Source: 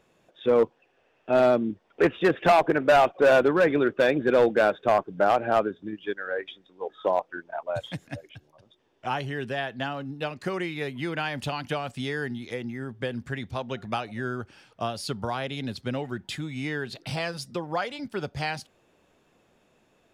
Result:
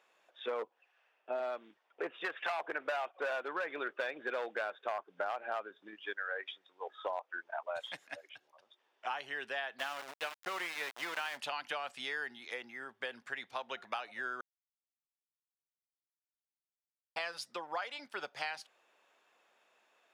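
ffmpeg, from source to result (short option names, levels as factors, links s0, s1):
-filter_complex "[0:a]asettb=1/sr,asplit=3[s0][s1][s2];[s0]atrim=end=0.624[s3];[s1]atrim=start=0.62:end=2.6,asetpts=PTS-STARTPTS,afade=t=in:d=0.004:c=qsin,afade=t=out:st=1.976:d=0.004:c=qsin,acrossover=split=750[s4][s5];[s4]aeval=exprs='val(0)*(1-0.7/2+0.7/2*cos(2*PI*1.4*n/s))':c=same[s6];[s5]aeval=exprs='val(0)*(1-0.7/2-0.7/2*cos(2*PI*1.4*n/s))':c=same[s7];[s6][s7]amix=inputs=2:normalize=0[s8];[s2]atrim=start=2.596[s9];[s3][s8]acrossfade=d=0.004:c1=hsin:c2=qsin[s10];[s10][s9]acrossfade=d=0.004:c1=qsin:c2=hsin,asplit=3[s11][s12][s13];[s11]afade=t=out:st=9.78:d=0.02[s14];[s12]aeval=exprs='val(0)*gte(abs(val(0)),0.0237)':c=same,afade=t=in:st=9.78:d=0.02,afade=t=out:st=11.36:d=0.02[s15];[s13]afade=t=in:st=11.36:d=0.02[s16];[s14][s15][s16]amix=inputs=3:normalize=0,asplit=3[s17][s18][s19];[s17]atrim=end=14.41,asetpts=PTS-STARTPTS,afade=t=out:st=14.406:d=0.004:c=hsin[s20];[s18]atrim=start=14.41:end=17.16,asetpts=PTS-STARTPTS,volume=0[s21];[s19]atrim=start=17.16,asetpts=PTS-STARTPTS,afade=t=in:d=0.004:c=hsin[s22];[s20][s21][s22]concat=n=3:v=0:a=1,highpass=890,highshelf=f=4500:g=-8.5,acompressor=threshold=0.02:ratio=6"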